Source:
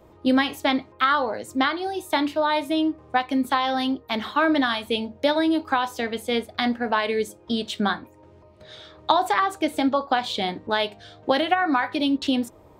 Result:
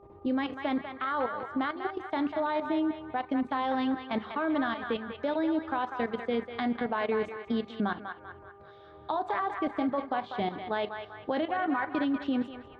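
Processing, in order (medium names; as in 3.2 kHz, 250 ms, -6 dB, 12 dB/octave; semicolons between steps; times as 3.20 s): level held to a coarse grid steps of 13 dB; tape spacing loss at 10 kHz 36 dB; mains buzz 400 Hz, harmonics 3, -56 dBFS -6 dB/octave; band-passed feedback delay 195 ms, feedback 52%, band-pass 1.6 kHz, level -5 dB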